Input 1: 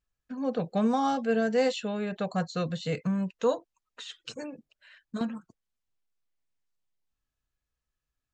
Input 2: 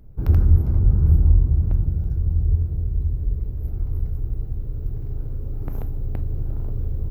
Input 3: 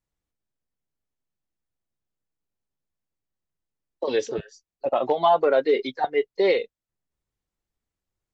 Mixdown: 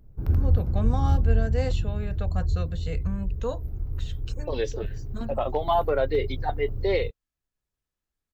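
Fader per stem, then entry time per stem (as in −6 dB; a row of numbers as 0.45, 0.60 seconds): −5.0, −6.0, −4.5 decibels; 0.00, 0.00, 0.45 seconds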